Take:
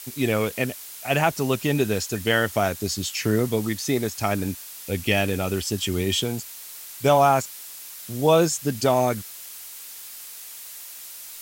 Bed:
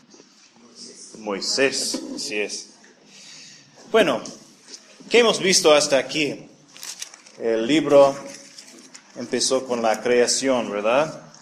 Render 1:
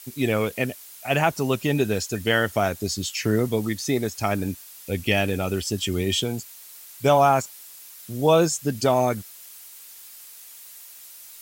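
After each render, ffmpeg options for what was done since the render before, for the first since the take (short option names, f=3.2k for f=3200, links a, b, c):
-af "afftdn=nr=6:nf=-40"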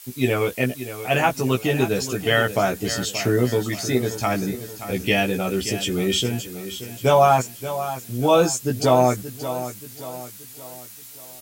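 -filter_complex "[0:a]asplit=2[a][b];[b]adelay=16,volume=-2.5dB[c];[a][c]amix=inputs=2:normalize=0,aecho=1:1:578|1156|1734|2312|2890:0.251|0.113|0.0509|0.0229|0.0103"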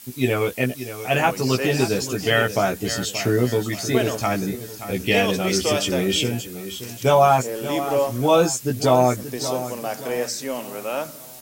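-filter_complex "[1:a]volume=-8dB[a];[0:a][a]amix=inputs=2:normalize=0"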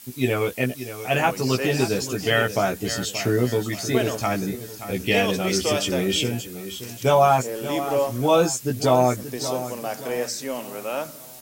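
-af "volume=-1.5dB"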